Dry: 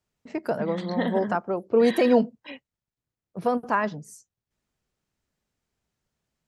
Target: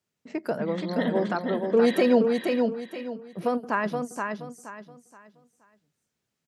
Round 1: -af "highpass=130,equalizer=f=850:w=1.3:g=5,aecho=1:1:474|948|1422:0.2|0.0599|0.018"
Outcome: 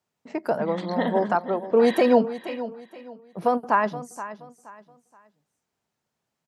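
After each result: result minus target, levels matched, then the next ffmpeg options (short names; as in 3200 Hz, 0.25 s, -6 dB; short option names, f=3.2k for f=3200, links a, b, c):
echo-to-direct -9.5 dB; 1000 Hz band +4.0 dB
-af "highpass=130,equalizer=f=850:w=1.3:g=5,aecho=1:1:474|948|1422|1896:0.596|0.179|0.0536|0.0161"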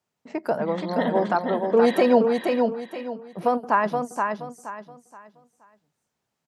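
1000 Hz band +4.5 dB
-af "highpass=130,equalizer=f=850:w=1.3:g=-4,aecho=1:1:474|948|1422|1896:0.596|0.179|0.0536|0.0161"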